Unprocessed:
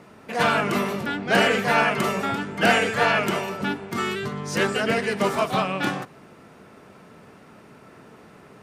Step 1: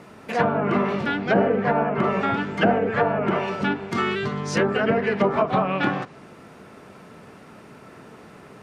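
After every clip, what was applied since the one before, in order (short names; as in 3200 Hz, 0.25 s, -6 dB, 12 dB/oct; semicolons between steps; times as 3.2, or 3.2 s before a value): treble ducked by the level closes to 700 Hz, closed at -16.5 dBFS; gain +3 dB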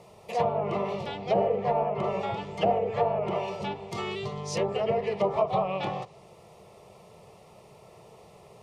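fixed phaser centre 640 Hz, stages 4; gain -2.5 dB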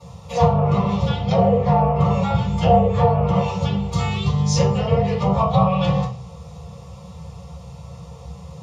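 reverb RT60 0.35 s, pre-delay 3 ms, DRR -12 dB; gain -5.5 dB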